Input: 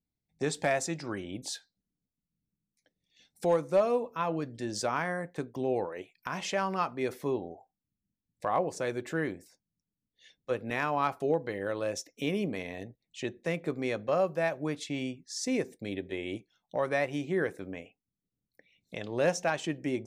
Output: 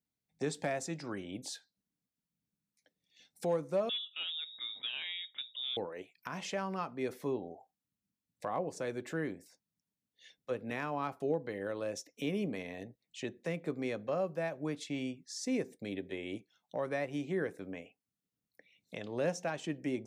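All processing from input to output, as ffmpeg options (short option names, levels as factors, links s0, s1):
-filter_complex "[0:a]asettb=1/sr,asplit=3[s0][s1][s2];[s0]atrim=end=3.894[s3];[s1]atrim=start=3.89:end=5.77,asetpts=PTS-STARTPTS,afade=t=in:d=0.004:c=qsin,afade=t=out:st=1.876:d=0.004:c=qsin,volume=15.8,asoftclip=hard,volume=0.0631,lowpass=f=3300:t=q:w=0.5098,lowpass=f=3300:t=q:w=0.6013,lowpass=f=3300:t=q:w=0.9,lowpass=f=3300:t=q:w=2.563,afreqshift=-3900[s4];[s2]atrim=start=5.766[s5];[s3][s4]acrossfade=d=0.004:c1=hsin:c2=qsin[s6];[s6][s5]acrossfade=d=0.004:c1=qsin:c2=hsin,equalizer=f=350:w=6.4:g=-4,acrossover=split=410[s7][s8];[s8]acompressor=threshold=0.00316:ratio=1.5[s9];[s7][s9]amix=inputs=2:normalize=0,highpass=f=190:p=1"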